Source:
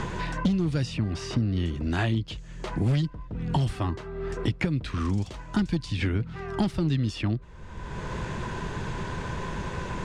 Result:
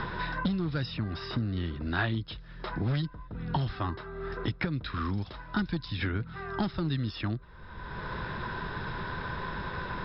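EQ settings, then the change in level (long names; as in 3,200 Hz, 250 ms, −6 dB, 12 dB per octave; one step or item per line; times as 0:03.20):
Chebyshev low-pass with heavy ripple 5,300 Hz, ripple 9 dB
+3.5 dB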